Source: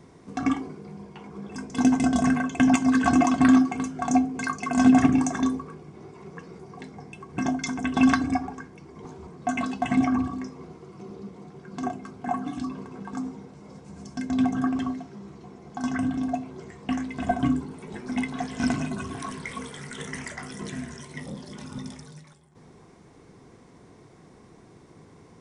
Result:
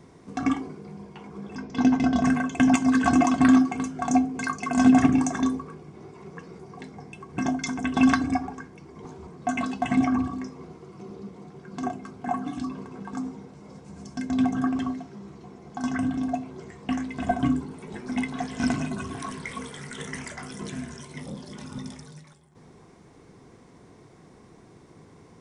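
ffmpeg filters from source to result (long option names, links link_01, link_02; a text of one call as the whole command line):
ffmpeg -i in.wav -filter_complex "[0:a]asettb=1/sr,asplit=3[link_01][link_02][link_03];[link_01]atrim=end=1.554[link_04];[link_02]atrim=start=1.55:end=2.25,asetpts=PTS-STARTPTS,afade=type=in:duration=0.004:curve=qsin,afade=type=out:start_time=0.696:duration=0.004:curve=qsin,lowpass=frequency=5200:width=0.5412,lowpass=frequency=5200:width=1.3066[link_05];[link_03]atrim=start=2.246[link_06];[link_04][link_05]acrossfade=duration=0.004:curve1=hsin:curve2=qsin[link_07];[link_07][link_06]acrossfade=duration=0.004:curve1=qsin:curve2=hsin,asettb=1/sr,asplit=3[link_08][link_09][link_10];[link_08]atrim=end=20.184[link_11];[link_09]atrim=start=20.18:end=21.49,asetpts=PTS-STARTPTS,afade=type=in:duration=0.004:curve=qsin,afade=type=out:start_time=1.306:duration=0.004:curve=qsin,bandreject=frequency=1900:width=12[link_12];[link_10]atrim=start=21.486[link_13];[link_11][link_12]acrossfade=duration=0.004:curve1=hsin:curve2=qsin[link_14];[link_14][link_13]acrossfade=duration=0.004:curve1=qsin:curve2=hsin" out.wav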